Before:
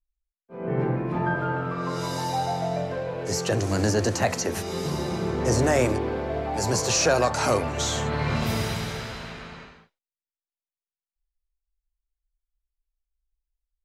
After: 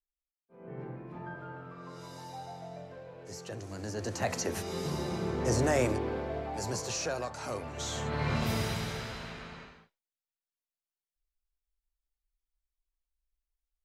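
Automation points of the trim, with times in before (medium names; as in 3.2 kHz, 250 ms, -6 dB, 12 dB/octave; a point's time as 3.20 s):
3.82 s -17 dB
4.36 s -6 dB
6.17 s -6 dB
7.41 s -16 dB
8.25 s -5 dB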